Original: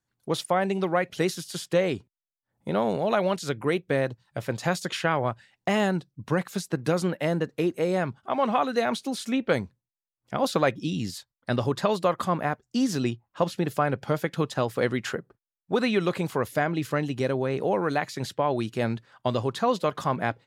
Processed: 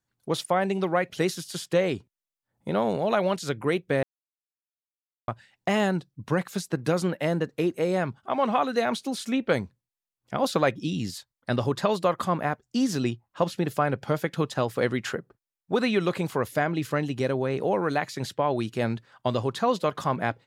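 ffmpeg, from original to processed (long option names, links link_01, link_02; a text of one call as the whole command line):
ffmpeg -i in.wav -filter_complex "[0:a]asplit=3[link_01][link_02][link_03];[link_01]atrim=end=4.03,asetpts=PTS-STARTPTS,afade=type=out:start_time=4.026:duration=0.004:curve=hsin[link_04];[link_02]atrim=start=4.03:end=5.28,asetpts=PTS-STARTPTS,volume=0[link_05];[link_03]atrim=start=5.28,asetpts=PTS-STARTPTS,afade=type=in:duration=0.004:curve=hsin[link_06];[link_04][link_05][link_06]concat=n=3:v=0:a=1" out.wav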